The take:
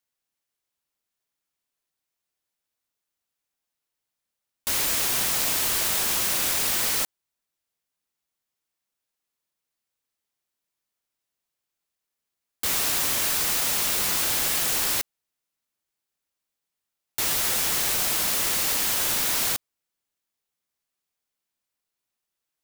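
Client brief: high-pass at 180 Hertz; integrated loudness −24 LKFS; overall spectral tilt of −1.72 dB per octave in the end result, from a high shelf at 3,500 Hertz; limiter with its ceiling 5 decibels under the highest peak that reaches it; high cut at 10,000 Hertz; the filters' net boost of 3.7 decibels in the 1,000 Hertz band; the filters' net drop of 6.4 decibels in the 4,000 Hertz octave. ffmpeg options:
ffmpeg -i in.wav -af "highpass=180,lowpass=10000,equalizer=frequency=1000:width_type=o:gain=5.5,highshelf=frequency=3500:gain=-7,equalizer=frequency=4000:width_type=o:gain=-3.5,volume=7.5dB,alimiter=limit=-15dB:level=0:latency=1" out.wav

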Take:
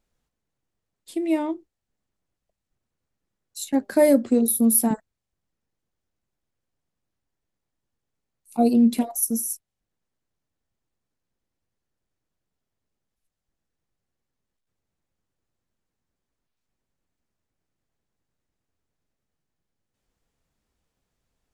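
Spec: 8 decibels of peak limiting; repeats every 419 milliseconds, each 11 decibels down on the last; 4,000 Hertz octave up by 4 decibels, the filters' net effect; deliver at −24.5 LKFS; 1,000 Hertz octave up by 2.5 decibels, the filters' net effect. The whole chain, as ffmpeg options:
ffmpeg -i in.wav -af "equalizer=frequency=1000:width_type=o:gain=3.5,equalizer=frequency=4000:width_type=o:gain=4.5,alimiter=limit=-14dB:level=0:latency=1,aecho=1:1:419|838|1257:0.282|0.0789|0.0221,volume=0.5dB" out.wav

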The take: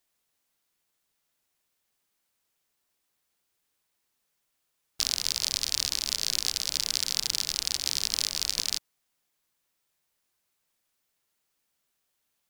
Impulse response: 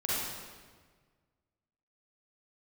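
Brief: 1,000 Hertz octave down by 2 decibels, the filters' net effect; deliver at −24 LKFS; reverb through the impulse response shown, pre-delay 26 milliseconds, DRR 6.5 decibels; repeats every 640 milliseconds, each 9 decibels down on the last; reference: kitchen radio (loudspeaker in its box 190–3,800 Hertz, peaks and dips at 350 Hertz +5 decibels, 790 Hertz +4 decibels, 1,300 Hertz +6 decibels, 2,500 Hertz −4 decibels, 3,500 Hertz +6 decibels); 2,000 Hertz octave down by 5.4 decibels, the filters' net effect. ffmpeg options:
-filter_complex "[0:a]equalizer=frequency=1000:width_type=o:gain=-6.5,equalizer=frequency=2000:width_type=o:gain=-4.5,aecho=1:1:640|1280|1920|2560:0.355|0.124|0.0435|0.0152,asplit=2[link_01][link_02];[1:a]atrim=start_sample=2205,adelay=26[link_03];[link_02][link_03]afir=irnorm=-1:irlink=0,volume=-14.5dB[link_04];[link_01][link_04]amix=inputs=2:normalize=0,highpass=190,equalizer=frequency=350:width_type=q:width=4:gain=5,equalizer=frequency=790:width_type=q:width=4:gain=4,equalizer=frequency=1300:width_type=q:width=4:gain=6,equalizer=frequency=2500:width_type=q:width=4:gain=-4,equalizer=frequency=3500:width_type=q:width=4:gain=6,lowpass=frequency=3800:width=0.5412,lowpass=frequency=3800:width=1.3066,volume=9dB"

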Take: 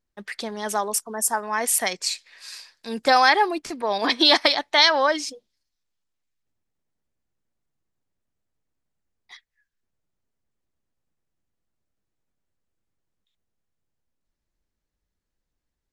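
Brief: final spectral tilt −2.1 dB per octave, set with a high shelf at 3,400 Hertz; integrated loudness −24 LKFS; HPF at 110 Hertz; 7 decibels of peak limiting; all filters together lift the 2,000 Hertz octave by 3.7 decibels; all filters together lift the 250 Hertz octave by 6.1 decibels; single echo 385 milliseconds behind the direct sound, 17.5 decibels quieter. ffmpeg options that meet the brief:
ffmpeg -i in.wav -af "highpass=110,equalizer=frequency=250:width_type=o:gain=8,equalizer=frequency=2000:width_type=o:gain=6,highshelf=frequency=3400:gain=-6.5,alimiter=limit=-8dB:level=0:latency=1,aecho=1:1:385:0.133,volume=-2dB" out.wav

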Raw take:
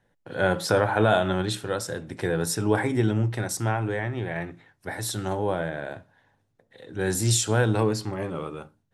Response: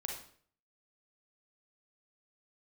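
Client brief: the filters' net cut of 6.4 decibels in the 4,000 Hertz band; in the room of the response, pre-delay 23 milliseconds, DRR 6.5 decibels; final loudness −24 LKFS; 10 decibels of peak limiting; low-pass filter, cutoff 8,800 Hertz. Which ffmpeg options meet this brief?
-filter_complex "[0:a]lowpass=8800,equalizer=frequency=4000:width_type=o:gain=-8,alimiter=limit=-18.5dB:level=0:latency=1,asplit=2[link_01][link_02];[1:a]atrim=start_sample=2205,adelay=23[link_03];[link_02][link_03]afir=irnorm=-1:irlink=0,volume=-7dB[link_04];[link_01][link_04]amix=inputs=2:normalize=0,volume=5.5dB"

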